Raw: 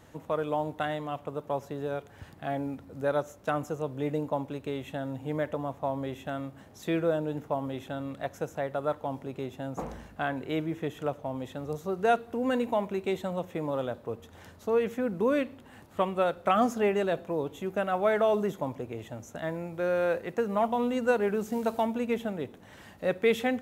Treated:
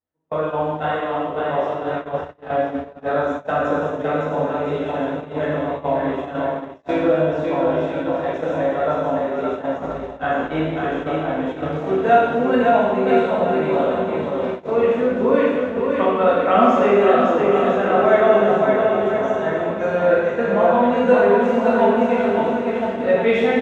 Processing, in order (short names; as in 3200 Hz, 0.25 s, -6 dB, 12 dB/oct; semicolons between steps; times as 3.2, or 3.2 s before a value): Bessel low-pass 2700 Hz, order 2; bell 120 Hz -13 dB 0.43 oct; on a send: bouncing-ball echo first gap 0.56 s, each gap 0.8×, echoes 5; on the sum: non-linear reverb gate 0.43 s falling, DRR -7.5 dB; gate -26 dBFS, range -42 dB; gain +2.5 dB